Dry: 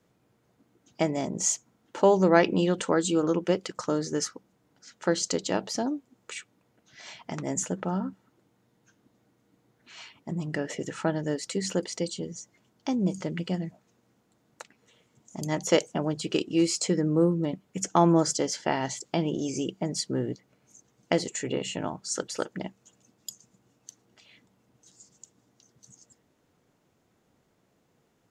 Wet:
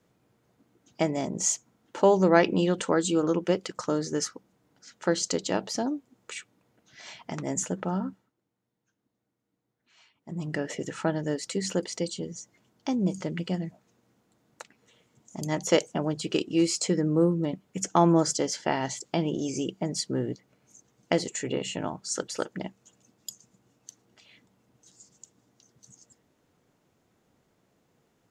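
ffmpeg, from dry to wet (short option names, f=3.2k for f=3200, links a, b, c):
-filter_complex "[0:a]asplit=3[a][b][c];[a]atrim=end=8.32,asetpts=PTS-STARTPTS,afade=t=out:st=8.09:d=0.23:silence=0.188365[d];[b]atrim=start=8.32:end=10.21,asetpts=PTS-STARTPTS,volume=-14.5dB[e];[c]atrim=start=10.21,asetpts=PTS-STARTPTS,afade=t=in:d=0.23:silence=0.188365[f];[d][e][f]concat=n=3:v=0:a=1"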